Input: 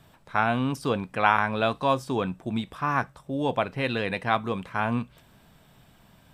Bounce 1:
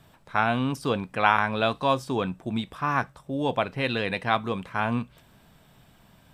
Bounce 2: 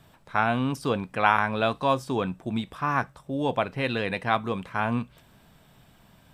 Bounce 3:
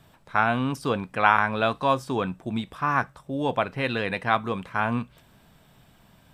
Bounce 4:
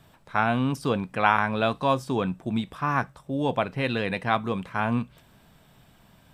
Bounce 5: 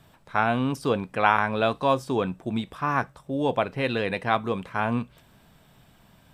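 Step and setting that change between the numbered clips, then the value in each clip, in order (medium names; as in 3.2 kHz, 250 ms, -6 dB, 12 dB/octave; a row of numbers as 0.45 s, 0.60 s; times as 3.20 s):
dynamic bell, frequency: 3.7 kHz, 10 kHz, 1.4 kHz, 170 Hz, 440 Hz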